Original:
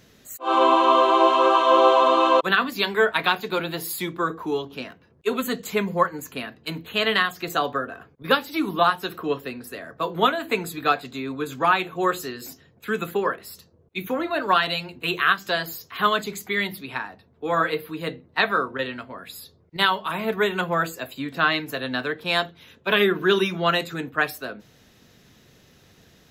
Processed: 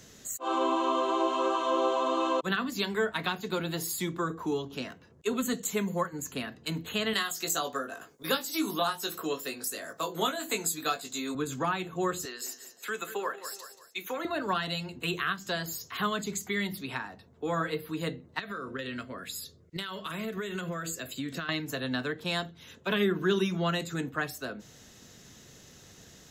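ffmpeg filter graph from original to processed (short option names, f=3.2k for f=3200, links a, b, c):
-filter_complex "[0:a]asettb=1/sr,asplit=3[a][b][c];[a]atrim=end=5.534[d];[b]atrim=start=5.53:end=6.13,asetpts=PTS-STARTPTS,afade=t=in:d=0.004:c=qsin,afade=t=out:st=0.596:d=0.004:c=qsin,highpass=f=190:p=1,highshelf=f=7.9k:g=8.5,bandreject=f=4.9k:w=7.4[e];[c]atrim=start=6.126[f];[d][e]acrossfade=d=0.004:c1=hsin:c2=qsin[g];[g][f]acrossfade=d=0.004:c1=qsin:c2=hsin,asettb=1/sr,asplit=3[h][i][j];[h]atrim=end=7.134[k];[i]atrim=start=7.13:end=11.35,asetpts=PTS-STARTPTS,afade=t=in:d=0.004:c=qsin,afade=t=out:st=4.216:d=0.004:c=qsin,bass=f=250:g=-12,treble=f=4k:g=12,asplit=2[l][m];[m]adelay=19,volume=-5.5dB[n];[l][n]amix=inputs=2:normalize=0,atrim=end_sample=186102[o];[j]atrim=start=11.346[p];[k][o]acrossfade=d=0.004:c1=hsin:c2=qsin[q];[q][p]acrossfade=d=0.004:c1=qsin:c2=hsin,asettb=1/sr,asplit=3[r][s][t];[r]atrim=end=12.254[u];[s]atrim=start=12.25:end=14.25,asetpts=PTS-STARTPTS,afade=t=in:d=0.004:c=qsin,afade=t=out:st=1.996:d=0.004:c=qsin,highpass=530,aecho=1:1:182|364|546:0.2|0.0698|0.0244,atrim=end_sample=88200[v];[t]atrim=start=14.246[w];[u][v]acrossfade=d=0.004:c1=hsin:c2=qsin[x];[x][w]acrossfade=d=0.004:c1=qsin:c2=hsin,asettb=1/sr,asplit=3[y][z][aa];[y]atrim=end=18.394[ab];[z]atrim=start=18.39:end=21.49,asetpts=PTS-STARTPTS,afade=t=in:d=0.004:c=qsin,afade=t=out:st=3.096:d=0.004:c=qsin,equalizer=f=850:t=o:w=0.52:g=-12.5,acompressor=threshold=-29dB:ratio=8:attack=3.2:release=140:knee=1:detection=peak[ac];[aa]atrim=start=21.486[ad];[ab][ac]acrossfade=d=0.004:c1=hsin:c2=qsin[ae];[ae][ad]acrossfade=d=0.004:c1=qsin:c2=hsin,equalizer=f=7k:t=o:w=0.68:g=11,bandreject=f=2.4k:w=19,acrossover=split=270[af][ag];[ag]acompressor=threshold=-37dB:ratio=2[ah];[af][ah]amix=inputs=2:normalize=0"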